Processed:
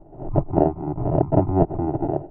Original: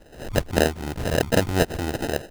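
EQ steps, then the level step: Gaussian blur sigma 7 samples; fixed phaser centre 330 Hz, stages 8; +7.5 dB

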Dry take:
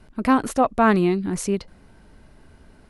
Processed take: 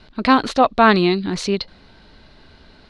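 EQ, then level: synth low-pass 4100 Hz, resonance Q 4.3; low shelf 370 Hz -5 dB; +5.5 dB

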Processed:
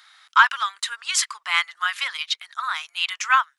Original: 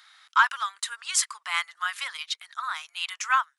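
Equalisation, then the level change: low shelf 450 Hz +3.5 dB; dynamic EQ 2800 Hz, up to +5 dB, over -38 dBFS, Q 0.73; dynamic EQ 9300 Hz, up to -5 dB, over -47 dBFS, Q 1.8; +2.5 dB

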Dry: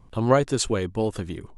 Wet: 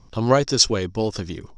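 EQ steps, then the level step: synth low-pass 5500 Hz, resonance Q 11; +1.5 dB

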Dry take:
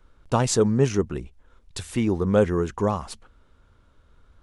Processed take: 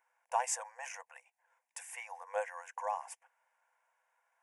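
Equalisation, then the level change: brick-wall FIR high-pass 500 Hz; bell 3300 Hz -10 dB 0.47 oct; fixed phaser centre 850 Hz, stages 8; -4.0 dB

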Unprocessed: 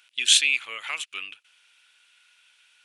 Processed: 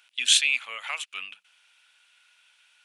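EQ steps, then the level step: rippled Chebyshev high-pass 180 Hz, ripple 6 dB; bell 320 Hz -9.5 dB 0.85 oct; +4.0 dB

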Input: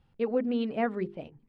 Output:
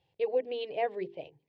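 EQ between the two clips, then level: BPF 150–3500 Hz; high shelf 2200 Hz +9.5 dB; fixed phaser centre 550 Hz, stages 4; 0.0 dB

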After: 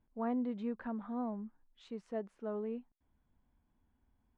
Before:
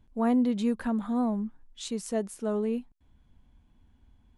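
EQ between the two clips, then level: LPF 1900 Hz 12 dB/oct; low shelf 210 Hz -8.5 dB; -7.5 dB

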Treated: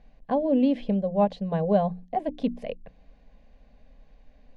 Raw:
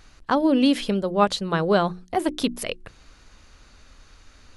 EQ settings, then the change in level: Butterworth band-stop 920 Hz, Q 7.8; LPF 1400 Hz 12 dB/oct; fixed phaser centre 350 Hz, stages 6; 0.0 dB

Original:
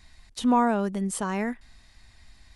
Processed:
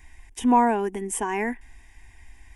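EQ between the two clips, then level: fixed phaser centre 860 Hz, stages 8; +6.0 dB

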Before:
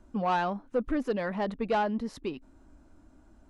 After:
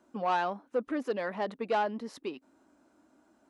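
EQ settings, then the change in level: HPF 290 Hz 12 dB/oct; -1.0 dB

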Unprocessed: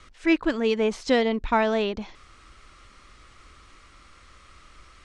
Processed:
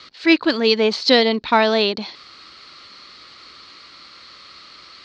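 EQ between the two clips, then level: HPF 180 Hz 12 dB/oct; synth low-pass 4400 Hz, resonance Q 7.2; +6.0 dB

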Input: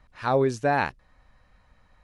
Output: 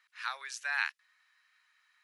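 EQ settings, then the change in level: HPF 1500 Hz 24 dB/oct; 0.0 dB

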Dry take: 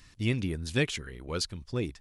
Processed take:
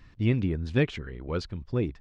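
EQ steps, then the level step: tape spacing loss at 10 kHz 31 dB; +5.0 dB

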